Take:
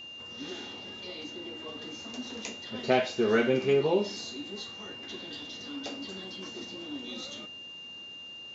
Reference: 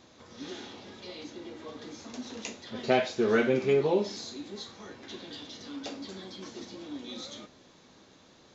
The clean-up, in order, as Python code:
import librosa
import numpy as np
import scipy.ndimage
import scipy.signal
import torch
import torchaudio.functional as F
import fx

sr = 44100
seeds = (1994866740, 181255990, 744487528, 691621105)

y = fx.notch(x, sr, hz=2800.0, q=30.0)